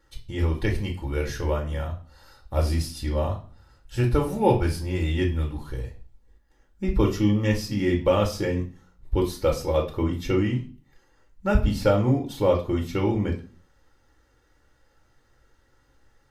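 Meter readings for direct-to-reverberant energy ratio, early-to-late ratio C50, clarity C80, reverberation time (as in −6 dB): 0.0 dB, 11.0 dB, 16.5 dB, 0.40 s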